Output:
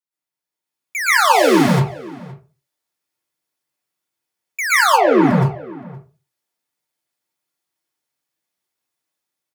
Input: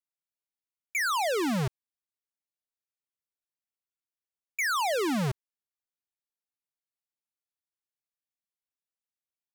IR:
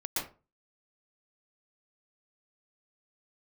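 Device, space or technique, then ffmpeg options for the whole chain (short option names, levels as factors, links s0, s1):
far laptop microphone: -filter_complex "[0:a]asplit=3[s0][s1][s2];[s0]afade=t=out:st=4.83:d=0.02[s3];[s1]lowpass=1700,afade=t=in:st=4.83:d=0.02,afade=t=out:st=5.3:d=0.02[s4];[s2]afade=t=in:st=5.3:d=0.02[s5];[s3][s4][s5]amix=inputs=3:normalize=0,asplit=2[s6][s7];[s7]adelay=519,volume=0.1,highshelf=f=4000:g=-11.7[s8];[s6][s8]amix=inputs=2:normalize=0[s9];[1:a]atrim=start_sample=2205[s10];[s9][s10]afir=irnorm=-1:irlink=0,highpass=100,dynaudnorm=f=160:g=9:m=2.51,volume=1.33"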